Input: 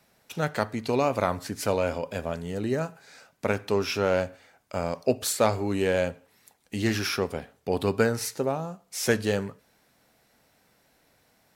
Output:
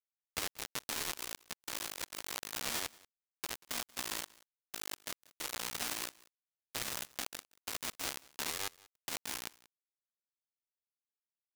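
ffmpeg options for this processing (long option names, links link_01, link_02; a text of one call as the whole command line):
ffmpeg -i in.wav -filter_complex "[0:a]anlmdn=0.158,asetrate=26222,aresample=44100,atempo=1.68179,acrossover=split=570|4600[link_01][link_02][link_03];[link_01]acompressor=threshold=-24dB:ratio=4[link_04];[link_02]acompressor=threshold=-42dB:ratio=4[link_05];[link_03]acompressor=threshold=-47dB:ratio=4[link_06];[link_04][link_05][link_06]amix=inputs=3:normalize=0,adynamicequalizer=threshold=0.00398:dfrequency=470:dqfactor=3:tfrequency=470:tqfactor=3:attack=5:release=100:ratio=0.375:range=2:mode=boostabove:tftype=bell,aeval=exprs='(mod(25.1*val(0)+1,2)-1)/25.1':channel_layout=same,equalizer=frequency=180:width=0.57:gain=-14.5,acrusher=bits=3:mix=0:aa=0.5,asplit=2[link_07][link_08];[link_08]aecho=0:1:185:0.0668[link_09];[link_07][link_09]amix=inputs=2:normalize=0,volume=9.5dB" out.wav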